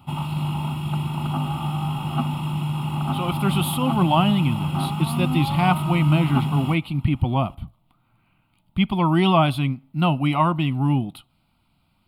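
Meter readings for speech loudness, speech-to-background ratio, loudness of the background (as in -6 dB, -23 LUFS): -22.0 LUFS, 4.0 dB, -26.0 LUFS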